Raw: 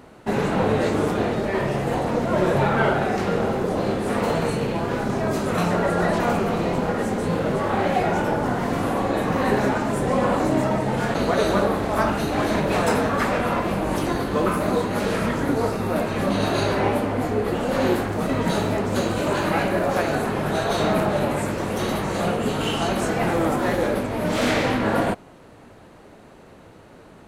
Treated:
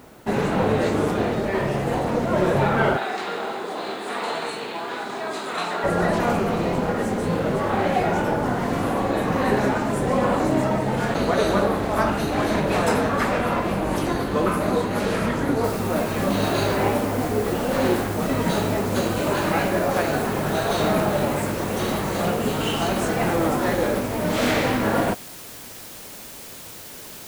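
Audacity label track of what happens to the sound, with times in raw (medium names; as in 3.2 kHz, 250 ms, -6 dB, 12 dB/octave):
2.970000	5.840000	cabinet simulation 480–9400 Hz, peaks and dips at 540 Hz -9 dB, 3.8 kHz +7 dB, 5.8 kHz -6 dB
15.640000	15.640000	noise floor step -58 dB -40 dB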